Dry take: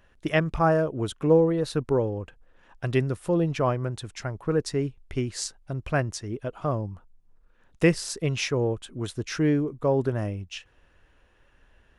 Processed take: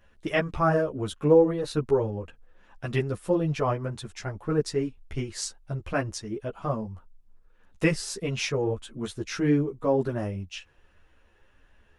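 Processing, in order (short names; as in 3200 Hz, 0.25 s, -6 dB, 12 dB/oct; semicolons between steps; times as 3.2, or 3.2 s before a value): ensemble effect; gain +2 dB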